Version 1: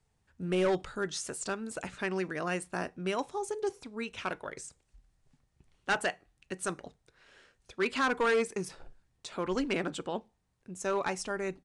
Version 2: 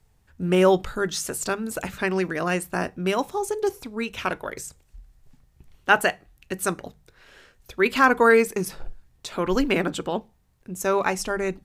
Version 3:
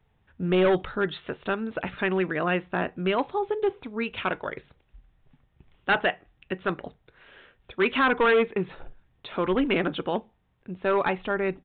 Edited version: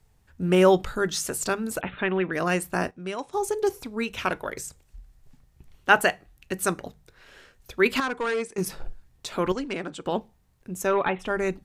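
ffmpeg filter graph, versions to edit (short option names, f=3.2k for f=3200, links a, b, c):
-filter_complex "[2:a]asplit=2[a][b];[0:a]asplit=3[c][d][e];[1:a]asplit=6[f][g][h][i][j][k];[f]atrim=end=1.812[l];[a]atrim=start=1.808:end=2.332[m];[g]atrim=start=2.328:end=2.912[n];[c]atrim=start=2.908:end=3.332[o];[h]atrim=start=3.328:end=8.002[p];[d]atrim=start=7.998:end=8.582[q];[i]atrim=start=8.578:end=9.522[r];[e]atrim=start=9.518:end=10.062[s];[j]atrim=start=10.058:end=10.99[t];[b]atrim=start=10.75:end=11.43[u];[k]atrim=start=11.19[v];[l][m]acrossfade=d=0.004:c1=hsin:c2=hsin[w];[w][n]acrossfade=d=0.004:c1=hsin:c2=hsin[x];[x][o]acrossfade=d=0.004:c1=hsin:c2=hsin[y];[y][p]acrossfade=d=0.004:c1=hsin:c2=hsin[z];[z][q]acrossfade=d=0.004:c1=hsin:c2=hsin[aa];[aa][r]acrossfade=d=0.004:c1=hsin:c2=hsin[ab];[ab][s]acrossfade=d=0.004:c1=hsin:c2=hsin[ac];[ac][t]acrossfade=d=0.004:c1=hsin:c2=hsin[ad];[ad][u]acrossfade=d=0.24:c1=tri:c2=tri[ae];[ae][v]acrossfade=d=0.24:c1=tri:c2=tri"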